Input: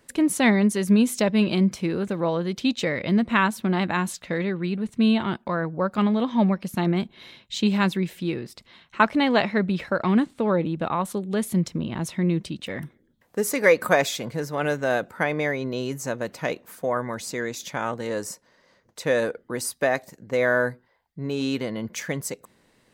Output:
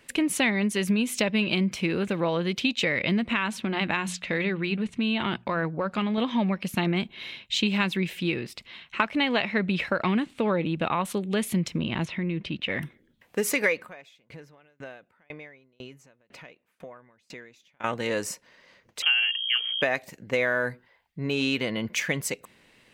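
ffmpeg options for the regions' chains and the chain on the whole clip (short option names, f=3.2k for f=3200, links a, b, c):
-filter_complex "[0:a]asettb=1/sr,asplit=3[a][b][c];[a]atrim=end=3.334[d];[b]atrim=start=3.33:end=6.18,asetpts=PTS-STARTPTS,afade=t=in:d=0.004:c=qsin,afade=t=out:st=2.846:d=0.004:c=qsin,lowpass=9.1k,acompressor=threshold=-22dB:ratio=6:attack=3.2:release=140:knee=1:detection=peak,bandreject=f=60:t=h:w=6,bandreject=f=120:t=h:w=6,bandreject=f=180:t=h:w=6[e];[c]atrim=start=6.176[f];[d][e]acrossfade=d=0.004:c1=hsin:c2=qsin[g];[g][f]acrossfade=d=0.004:c1=qsin:c2=hsin,asettb=1/sr,asplit=3[h][i][j];[h]atrim=end=12.054[k];[i]atrim=start=12.05:end=12.72,asetpts=PTS-STARTPTS,afade=t=in:d=0.004:c=qsin,afade=t=out:st=0.666:d=0.004:c=qsin,lowpass=3.1k,acompressor=threshold=-25dB:ratio=6:attack=3.2:release=140:knee=1:detection=peak[l];[j]atrim=start=12.716[m];[k][l]acrossfade=d=0.004:c1=hsin:c2=qsin[n];[n][m]acrossfade=d=0.004:c1=qsin:c2=hsin,asettb=1/sr,asplit=3[o][p][q];[o]atrim=end=13.804[r];[p]atrim=start=13.8:end=17.84,asetpts=PTS-STARTPTS,afade=t=in:d=0.004:c=qsin,afade=t=out:st=4.036:d=0.004:c=qsin,aemphasis=mode=reproduction:type=cd,acompressor=threshold=-41dB:ratio=2.5:attack=3.2:release=140:knee=1:detection=peak,aeval=exprs='val(0)*pow(10,-33*if(lt(mod(2*n/s,1),2*abs(2)/1000),1-mod(2*n/s,1)/(2*abs(2)/1000),(mod(2*n/s,1)-2*abs(2)/1000)/(1-2*abs(2)/1000))/20)':c=same[s];[q]atrim=start=17.836[t];[r][s]acrossfade=d=0.004:c1=hsin:c2=qsin[u];[u][t]acrossfade=d=0.004:c1=qsin:c2=hsin,asettb=1/sr,asplit=3[v][w][x];[v]atrim=end=19.024[y];[w]atrim=start=19.02:end=19.82,asetpts=PTS-STARTPTS,afade=t=in:d=0.004:c=qsin,afade=t=out:st=0.796:d=0.004:c=qsin,equalizer=f=140:t=o:w=2:g=-7.5,aeval=exprs='val(0)+0.0158*(sin(2*PI*60*n/s)+sin(2*PI*2*60*n/s)/2+sin(2*PI*3*60*n/s)/3+sin(2*PI*4*60*n/s)/4+sin(2*PI*5*60*n/s)/5)':c=same,lowpass=f=2.8k:t=q:w=0.5098,lowpass=f=2.8k:t=q:w=0.6013,lowpass=f=2.8k:t=q:w=0.9,lowpass=f=2.8k:t=q:w=2.563,afreqshift=-3300[z];[x]atrim=start=19.816[aa];[y][z]acrossfade=d=0.004:c1=hsin:c2=qsin[ab];[ab][aa]acrossfade=d=0.004:c1=qsin:c2=hsin,equalizer=f=2.6k:w=1.4:g=11,acompressor=threshold=-21dB:ratio=6"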